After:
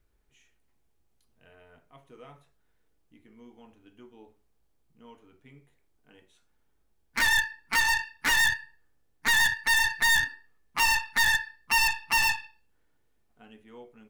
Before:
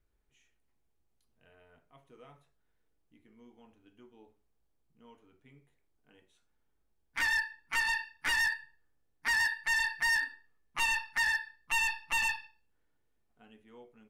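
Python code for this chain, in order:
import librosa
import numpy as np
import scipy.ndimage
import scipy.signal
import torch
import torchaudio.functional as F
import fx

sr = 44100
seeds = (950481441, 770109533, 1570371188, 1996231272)

y = fx.tracing_dist(x, sr, depth_ms=0.15)
y = y * 10.0 ** (6.0 / 20.0)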